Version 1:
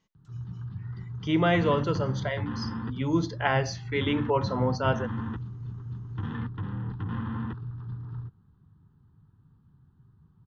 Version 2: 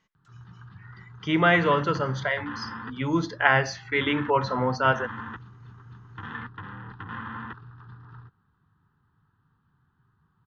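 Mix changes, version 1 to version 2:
background: add low-shelf EQ 390 Hz −11 dB
master: add parametric band 1,600 Hz +9.5 dB 1.5 octaves

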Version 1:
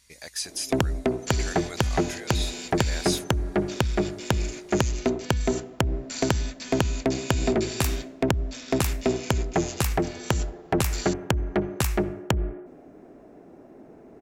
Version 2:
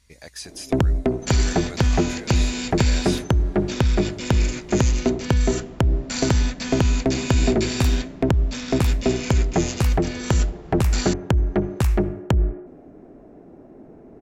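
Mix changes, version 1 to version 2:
second sound +10.5 dB
master: add spectral tilt −2 dB per octave

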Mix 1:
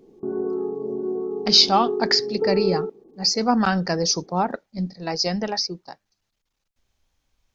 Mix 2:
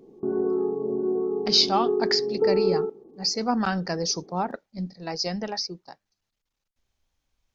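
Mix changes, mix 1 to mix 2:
speech −5.0 dB
reverb: on, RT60 0.50 s

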